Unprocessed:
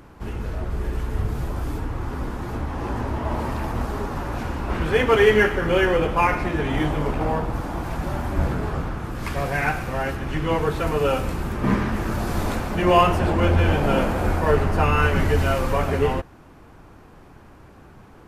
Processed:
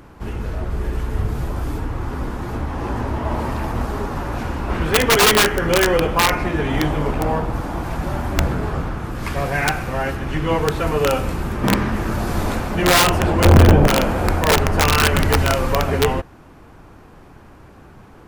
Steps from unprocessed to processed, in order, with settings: integer overflow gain 10.5 dB; 13.45–13.87 s: tilt shelf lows +7.5 dB, about 1.1 kHz; trim +3 dB

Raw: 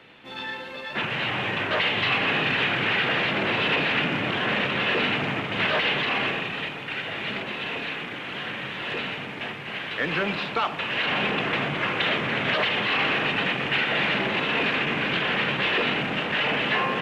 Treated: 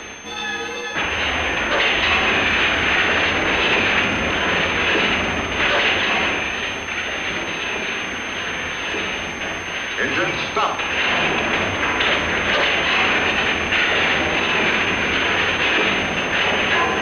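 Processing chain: wow and flutter 28 cents; on a send: flutter echo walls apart 10.6 m, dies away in 0.5 s; on the sum: frequency shift -50 Hz; peaking EQ 130 Hz -12.5 dB 0.64 oct; reverse; upward compressor, threshold -26 dBFS; reverse; whistle 6.3 kHz -46 dBFS; trim +5.5 dB

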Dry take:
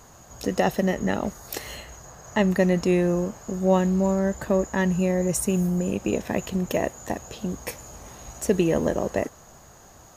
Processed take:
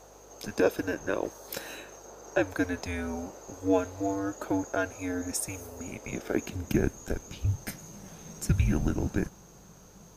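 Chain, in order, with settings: high-pass sweep 780 Hz -> 95 Hz, 6.19–7.95 s; frequency shift -280 Hz; hum 50 Hz, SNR 29 dB; trim -4.5 dB

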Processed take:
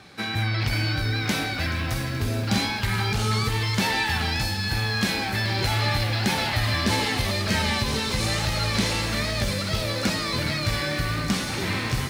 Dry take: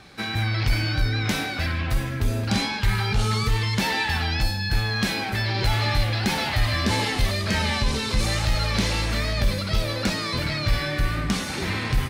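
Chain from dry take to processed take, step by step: high-pass 75 Hz; on a send: feedback echo behind a high-pass 615 ms, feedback 68%, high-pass 5.6 kHz, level -5 dB; on the sum: bit-crushed delay 428 ms, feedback 80%, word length 7-bit, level -14.5 dB

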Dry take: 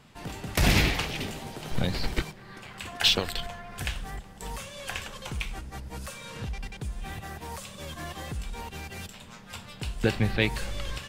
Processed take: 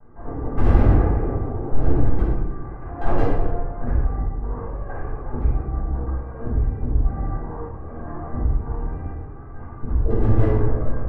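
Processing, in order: comb filter that takes the minimum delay 2.5 ms; Bessel low-pass 810 Hz, order 8; hard clipper -25.5 dBFS, distortion -12 dB; 7.67–10.11 s: bands offset in time lows, highs 60 ms, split 530 Hz; reverberation RT60 1.0 s, pre-delay 5 ms, DRR -11 dB; trim -2.5 dB

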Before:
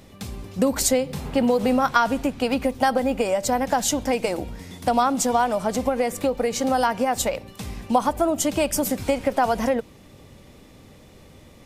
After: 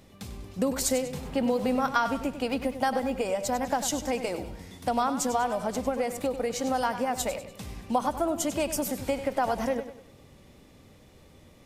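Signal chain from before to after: modulated delay 98 ms, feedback 40%, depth 56 cents, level -11 dB; trim -6.5 dB

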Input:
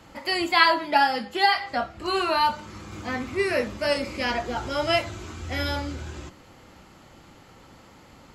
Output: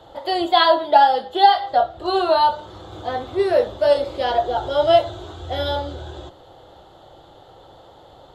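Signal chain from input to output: FFT filter 130 Hz 0 dB, 230 Hz -11 dB, 350 Hz +4 dB, 730 Hz +11 dB, 1.1 kHz -1 dB, 1.6 kHz -2 dB, 2.4 kHz -15 dB, 3.5 kHz +10 dB, 5.1 kHz -10 dB, 13 kHz -7 dB; trim +1 dB

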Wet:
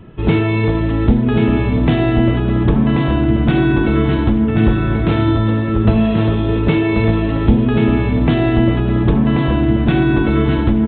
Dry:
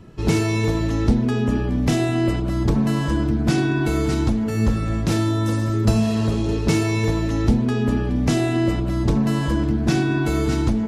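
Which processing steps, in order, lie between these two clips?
resampled via 8 kHz; on a send: delay 1085 ms -5.5 dB; on the sum: trim +5 dB

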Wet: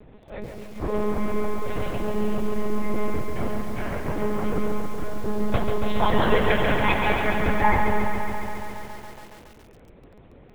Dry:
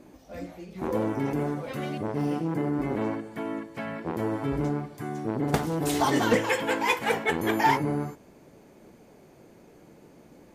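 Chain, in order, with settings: on a send at -15 dB: peaking EQ 890 Hz +4.5 dB 0.41 oct + reverberation RT60 0.30 s, pre-delay 75 ms; on the sum: saturation -15 dBFS, distortion -21 dB; monotone LPC vocoder at 8 kHz 210 Hz; 7.25–7.81 s: steep low-pass 2.3 kHz 72 dB/octave; bit-crushed delay 139 ms, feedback 80%, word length 8-bit, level -6 dB; trim +3.5 dB

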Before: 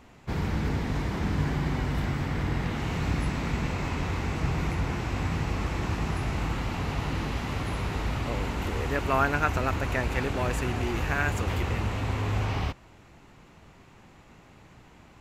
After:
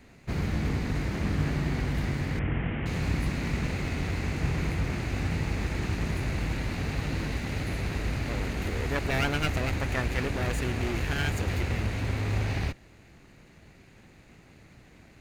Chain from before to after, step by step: comb filter that takes the minimum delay 0.45 ms; 2.39–2.86 s: steep low-pass 3.3 kHz 96 dB/octave

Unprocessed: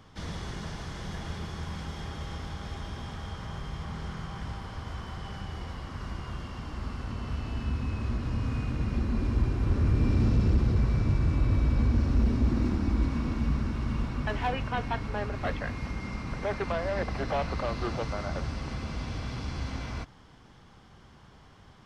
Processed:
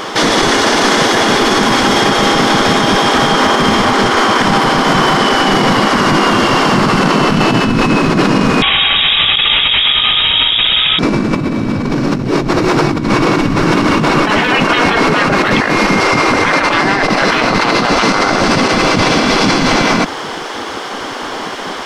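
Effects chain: 8.62–10.99 s: frequency inversion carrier 3.6 kHz; bass shelf 180 Hz +9 dB; spectral gate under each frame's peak -15 dB weak; compressor with a negative ratio -42 dBFS, ratio -1; loudness maximiser +34.5 dB; trim -1 dB

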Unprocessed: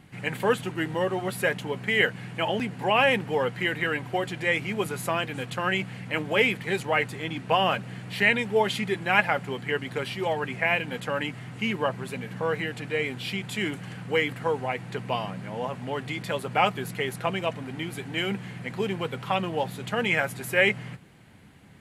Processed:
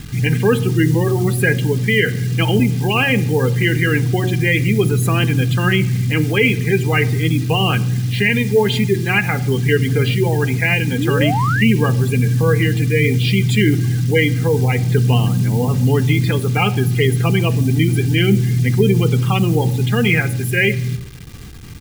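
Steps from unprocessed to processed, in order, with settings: in parallel at +3 dB: gain riding within 5 dB 0.5 s; on the sum: spectral gate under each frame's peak -20 dB strong; tilt shelf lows +6.5 dB, about 640 Hz; bit crusher 7-bit; amplifier tone stack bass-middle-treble 6-0-2; comb 2.5 ms, depth 49%; de-hum 91.66 Hz, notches 10; on a send at -13 dB: reverberation RT60 0.95 s, pre-delay 4 ms; on the sum: painted sound rise, 10.98–11.65 s, 260–2100 Hz -44 dBFS; loudness maximiser +26 dB; trim -2.5 dB

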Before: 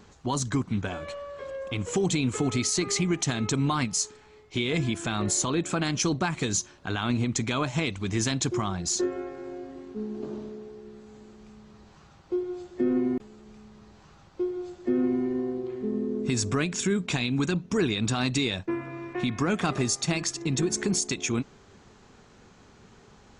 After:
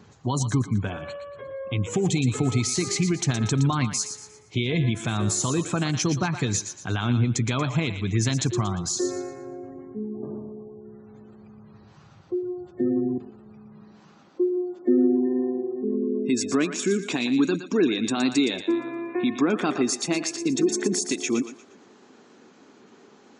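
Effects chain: spectral gate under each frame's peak -30 dB strong; thinning echo 117 ms, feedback 37%, high-pass 720 Hz, level -8.5 dB; high-pass sweep 110 Hz -> 280 Hz, 13.46–14.40 s

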